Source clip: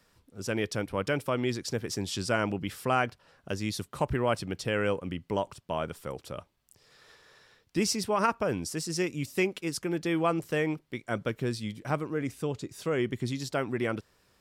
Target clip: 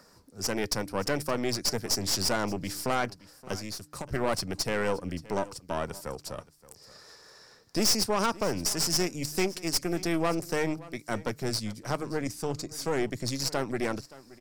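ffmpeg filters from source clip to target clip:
-filter_complex "[0:a]highshelf=f=4k:t=q:w=3:g=6.5,bandreject=f=149.7:t=h:w=4,bandreject=f=299.4:t=h:w=4,acrossover=split=140|1700[a][b][c];[b]acompressor=mode=upward:threshold=-51dB:ratio=2.5[d];[a][d][c]amix=inputs=3:normalize=0,aeval=exprs='(tanh(17.8*val(0)+0.75)-tanh(0.75))/17.8':c=same,asplit=3[e][f][g];[e]afade=t=out:st=3.55:d=0.02[h];[f]acompressor=threshold=-39dB:ratio=6,afade=t=in:st=3.55:d=0.02,afade=t=out:st=4.12:d=0.02[i];[g]afade=t=in:st=4.12:d=0.02[j];[h][i][j]amix=inputs=3:normalize=0,asplit=2[k][l];[l]aecho=0:1:573:0.106[m];[k][m]amix=inputs=2:normalize=0,volume=4.5dB"

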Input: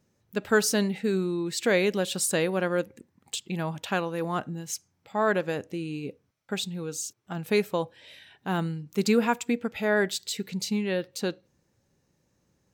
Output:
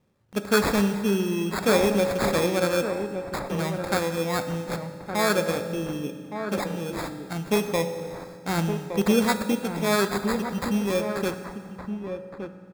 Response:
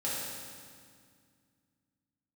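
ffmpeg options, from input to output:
-filter_complex "[0:a]acrusher=samples=15:mix=1:aa=0.000001,asplit=2[a][b];[b]adelay=1166,volume=-7dB,highshelf=f=4k:g=-26.2[c];[a][c]amix=inputs=2:normalize=0,asplit=2[d][e];[1:a]atrim=start_sample=2205[f];[e][f]afir=irnorm=-1:irlink=0,volume=-11.5dB[g];[d][g]amix=inputs=2:normalize=0"

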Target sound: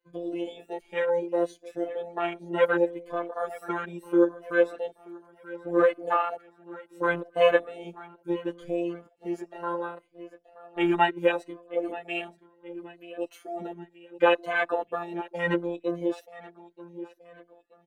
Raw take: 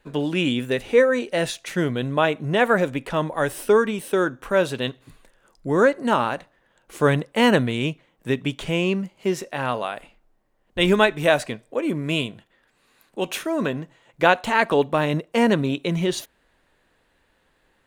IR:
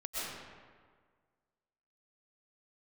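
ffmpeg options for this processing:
-filter_complex "[0:a]afftfilt=real='re*pow(10,11/40*sin(2*PI*(1.9*log(max(b,1)*sr/1024/100)/log(2)-(2.7)*(pts-256)/sr)))':imag='im*pow(10,11/40*sin(2*PI*(1.9*log(max(b,1)*sr/1024/100)/log(2)-(2.7)*(pts-256)/sr)))':win_size=1024:overlap=0.75,deesser=0.4,afwtdn=0.0794,lowshelf=f=250:t=q:w=1.5:g=-12.5,afftfilt=real='hypot(re,im)*cos(PI*b)':imag='0':win_size=1024:overlap=0.75,aecho=1:1:929|1858|2787|3716:0.126|0.0541|0.0233|0.01,asplit=2[a][b];[b]adelay=3.4,afreqshift=-0.7[c];[a][c]amix=inputs=2:normalize=1"

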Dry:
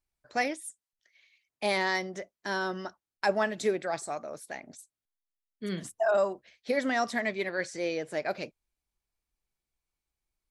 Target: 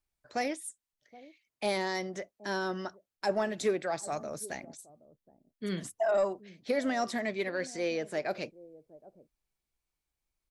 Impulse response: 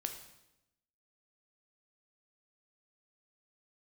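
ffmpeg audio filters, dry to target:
-filter_complex "[0:a]asettb=1/sr,asplit=3[a][b][c];[a]atrim=end=4.124[d];[b]atrim=start=4.12:end=4.65,asetpts=PTS-STARTPTS,afade=t=in:d=0.004:c=qsin,afade=t=out:st=0.526:d=0.004:c=qsin,bass=f=250:g=9,treble=f=4k:g=8[e];[c]atrim=start=4.646[f];[d][e]acrossfade=d=0.004:c1=hsin:c2=qsin[g];[g][f]acrossfade=d=0.004:c1=qsin:c2=hsin,acrossover=split=750|4300[h][i][j];[h]aecho=1:1:772:0.119[k];[i]alimiter=level_in=4.5dB:limit=-24dB:level=0:latency=1:release=110,volume=-4.5dB[l];[k][l][j]amix=inputs=3:normalize=0,asoftclip=type=tanh:threshold=-17.5dB"

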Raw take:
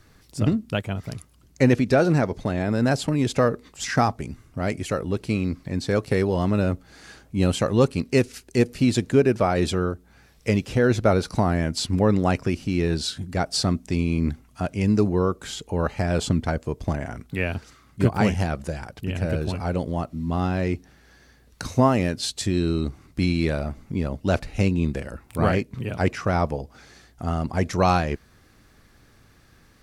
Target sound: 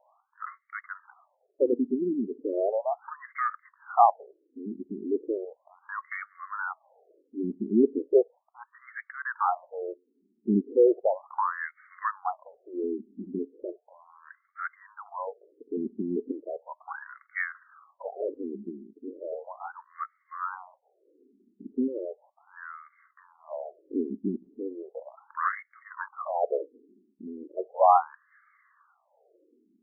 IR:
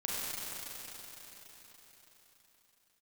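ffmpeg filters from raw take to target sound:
-af "asubboost=boost=6.5:cutoff=83,aphaser=in_gain=1:out_gain=1:delay=1:decay=0.49:speed=0.75:type=sinusoidal,afftfilt=real='re*between(b*sr/1024,280*pow(1600/280,0.5+0.5*sin(2*PI*0.36*pts/sr))/1.41,280*pow(1600/280,0.5+0.5*sin(2*PI*0.36*pts/sr))*1.41)':imag='im*between(b*sr/1024,280*pow(1600/280,0.5+0.5*sin(2*PI*0.36*pts/sr))/1.41,280*pow(1600/280,0.5+0.5*sin(2*PI*0.36*pts/sr))*1.41)':win_size=1024:overlap=0.75"

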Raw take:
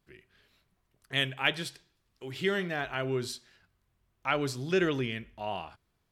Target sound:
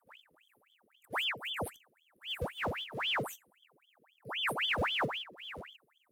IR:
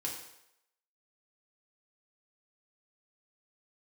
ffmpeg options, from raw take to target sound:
-filter_complex "[0:a]afftfilt=real='re*(1-between(b*sr/4096,190,9000))':imag='im*(1-between(b*sr/4096,190,9000))':win_size=4096:overlap=0.75,asplit=2[a][b];[b]acrusher=samples=34:mix=1:aa=0.000001:lfo=1:lforange=54.4:lforate=0.42,volume=-11.5dB[c];[a][c]amix=inputs=2:normalize=0,afreqshift=29,aeval=exprs='val(0)*sin(2*PI*1800*n/s+1800*0.85/3.8*sin(2*PI*3.8*n/s))':c=same,volume=6dB"

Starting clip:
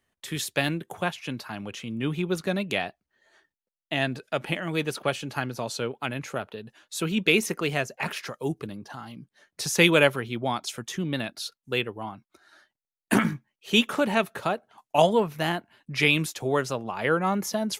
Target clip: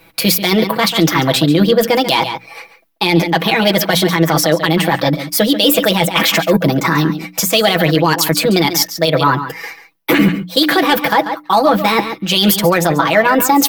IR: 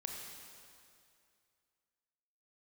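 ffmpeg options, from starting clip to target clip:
-filter_complex "[0:a]acrossover=split=7300[a][b];[a]adynamicsmooth=sensitivity=3:basefreq=4.4k[c];[c][b]amix=inputs=2:normalize=0,crystalizer=i=0.5:c=0,areverse,acompressor=threshold=-37dB:ratio=5,areverse,asplit=2[d][e];[e]adelay=180.8,volume=-12dB,highshelf=f=4k:g=-4.07[f];[d][f]amix=inputs=2:normalize=0,asetrate=57330,aresample=44100,bandreject=f=60:t=h:w=6,bandreject=f=120:t=h:w=6,bandreject=f=180:t=h:w=6,bandreject=f=240:t=h:w=6,bandreject=f=300:t=h:w=6,aecho=1:1:6.1:0.8,alimiter=level_in=28.5dB:limit=-1dB:release=50:level=0:latency=1,volume=-1dB"

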